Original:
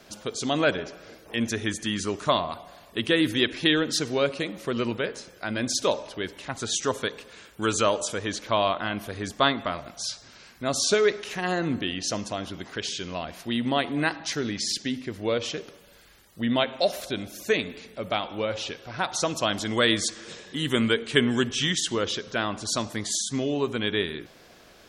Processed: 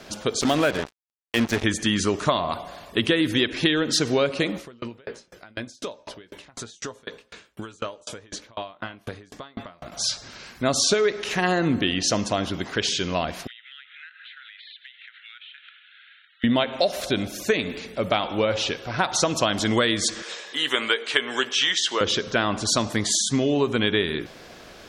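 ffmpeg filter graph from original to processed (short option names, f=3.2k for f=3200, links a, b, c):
-filter_complex "[0:a]asettb=1/sr,asplit=3[a][b][c];[a]atrim=end=0.414[d];[b]atrim=start=0.41:end=1.64,asetpts=PTS-STARTPTS,afade=t=in:d=0.004:c=qsin,afade=t=out:st=1.226:d=0.004:c=qsin,highpass=76,equalizer=f=9.9k:w=0.68:g=-9,acrusher=bits=4:mix=0:aa=0.5[e];[c]atrim=start=1.636[f];[d][e]acrossfade=d=0.004:c1=hsin:c2=qsin[g];[g][f]acrossfade=d=0.004:c1=qsin:c2=hsin,asettb=1/sr,asplit=3[h][i][j];[h]atrim=end=4.574[k];[i]atrim=start=4.57:end=9.92,asetpts=PTS-STARTPTS,afade=t=in:d=0.004:c=qsin,afade=t=out:st=5.346:d=0.004:c=qsin,asplit=2[l][m];[m]adelay=17,volume=-11dB[n];[l][n]amix=inputs=2:normalize=0,atrim=end_sample=235935,acompressor=threshold=-32dB:ratio=4:attack=3.2:release=140:knee=1:detection=peak,aeval=exprs='val(0)*pow(10,-32*if(lt(mod(4*n/s,1),2*abs(4)/1000),1-mod(4*n/s,1)/(2*abs(4)/1000),(mod(4*n/s,1)-2*abs(4)/1000)/(1-2*abs(4)/1000))/20)':c=same[o];[j]atrim=start=9.916[p];[k][o]acrossfade=d=0.004:c1=hsin:c2=qsin[q];[q][p]acrossfade=d=0.004:c1=qsin:c2=hsin,asettb=1/sr,asplit=3[r][s][t];[r]atrim=end=13.474[u];[s]atrim=start=13.47:end=16.44,asetpts=PTS-STARTPTS,afade=t=in:d=0.004:c=qsin,afade=t=out:st=2.966:d=0.004:c=qsin,asuperpass=centerf=2300:order=20:qfactor=0.9,acompressor=threshold=-48dB:ratio=12:attack=3.2:release=140:knee=1:detection=peak[v];[t]atrim=start=16.436[w];[u][v]acrossfade=d=0.004:c1=hsin:c2=qsin[x];[x][w]acrossfade=d=0.004:c1=qsin:c2=hsin,asettb=1/sr,asplit=3[y][z][aa];[y]atrim=end=20.224[ab];[z]atrim=start=20.22:end=22.01,asetpts=PTS-STARTPTS,afade=t=in:d=0.004:c=qsin,afade=t=out:st=1.786:d=0.004:c=qsin,acrossover=split=6500[ac][ad];[ad]acompressor=threshold=-50dB:ratio=4:attack=1:release=60[ae];[ac][ae]amix=inputs=2:normalize=0,highpass=640,asplit=2[af][ag];[ag]adelay=15,volume=-12dB[ah];[af][ah]amix=inputs=2:normalize=0,atrim=end_sample=78939[ai];[aa]atrim=start=22.006[aj];[ab][ai]acrossfade=d=0.004:c1=hsin:c2=qsin[ak];[ak][aj]acrossfade=d=0.004:c1=qsin:c2=hsin,highshelf=f=11k:g=-9,acompressor=threshold=-25dB:ratio=10,volume=8dB"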